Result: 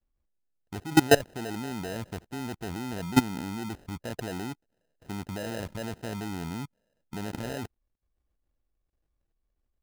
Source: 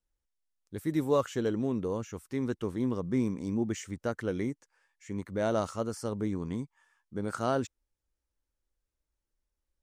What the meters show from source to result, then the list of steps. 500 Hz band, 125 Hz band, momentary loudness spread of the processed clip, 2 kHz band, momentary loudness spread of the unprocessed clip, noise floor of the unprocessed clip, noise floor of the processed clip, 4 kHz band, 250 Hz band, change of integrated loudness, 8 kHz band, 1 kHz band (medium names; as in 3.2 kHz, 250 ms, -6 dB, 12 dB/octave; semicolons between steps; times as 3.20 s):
-0.5 dB, +1.0 dB, 16 LU, +8.5 dB, 10 LU, under -85 dBFS, -80 dBFS, +10.5 dB, +0.5 dB, +1.5 dB, +7.0 dB, +3.5 dB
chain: tilt shelf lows +5.5 dB, about 940 Hz; sample-and-hold 39×; level held to a coarse grid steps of 21 dB; trim +7.5 dB